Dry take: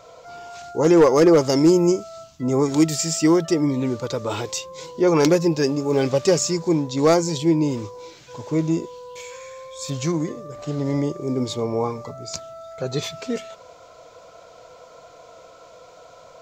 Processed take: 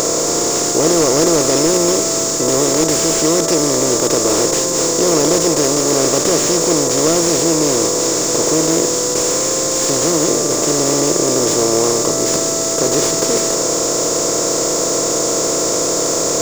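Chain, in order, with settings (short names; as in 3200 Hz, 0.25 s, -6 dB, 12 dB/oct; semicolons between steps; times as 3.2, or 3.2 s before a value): per-bin compression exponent 0.2; resonant high shelf 4400 Hz +12.5 dB, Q 1.5; slew limiter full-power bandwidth 1800 Hz; gain -5.5 dB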